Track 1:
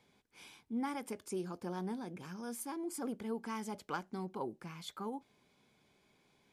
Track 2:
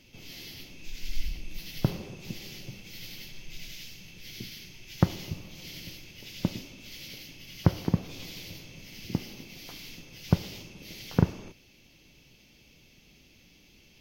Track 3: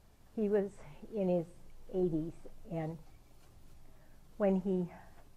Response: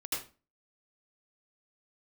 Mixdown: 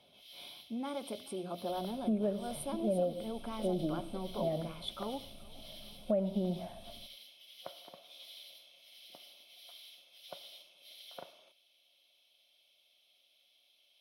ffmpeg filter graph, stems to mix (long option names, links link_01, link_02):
-filter_complex "[0:a]lowpass=frequency=2500:poles=1,bandreject=frequency=60:width_type=h:width=6,bandreject=frequency=120:width_type=h:width=6,bandreject=frequency=180:width_type=h:width=6,alimiter=level_in=9.5dB:limit=-24dB:level=0:latency=1,volume=-9.5dB,volume=0.5dB,asplit=3[link_01][link_02][link_03];[link_02]volume=-21.5dB[link_04];[link_03]volume=-22.5dB[link_05];[1:a]highpass=840,volume=-14.5dB[link_06];[2:a]equalizer=frequency=220:width_type=o:width=0.33:gain=14.5,adelay=1700,volume=0dB,asplit=2[link_07][link_08];[link_08]volume=-15.5dB[link_09];[3:a]atrim=start_sample=2205[link_10];[link_04][link_09]amix=inputs=2:normalize=0[link_11];[link_11][link_10]afir=irnorm=-1:irlink=0[link_12];[link_05]aecho=0:1:427|854|1281|1708|2135|2562|2989|3416|3843:1|0.58|0.336|0.195|0.113|0.0656|0.0381|0.0221|0.0128[link_13];[link_01][link_06][link_07][link_12][link_13]amix=inputs=5:normalize=0,superequalizer=8b=3.98:11b=0.501:13b=3.55:15b=0.398:16b=3.55,acompressor=threshold=-30dB:ratio=4"